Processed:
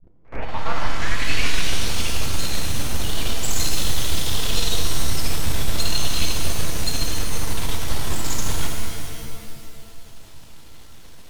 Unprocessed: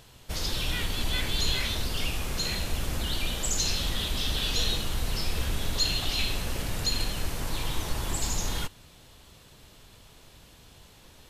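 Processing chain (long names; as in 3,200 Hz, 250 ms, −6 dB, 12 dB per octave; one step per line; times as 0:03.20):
turntable start at the beginning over 2.09 s
half-wave rectification
echo ahead of the sound 74 ms −23 dB
reverb with rising layers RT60 2 s, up +7 semitones, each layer −2 dB, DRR 1.5 dB
level +4.5 dB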